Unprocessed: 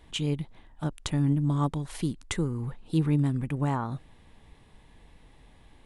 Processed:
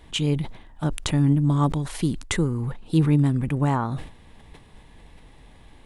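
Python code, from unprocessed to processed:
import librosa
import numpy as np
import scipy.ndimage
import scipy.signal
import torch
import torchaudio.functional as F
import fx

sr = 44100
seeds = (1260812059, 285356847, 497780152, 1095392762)

y = fx.sustainer(x, sr, db_per_s=110.0)
y = y * 10.0 ** (5.5 / 20.0)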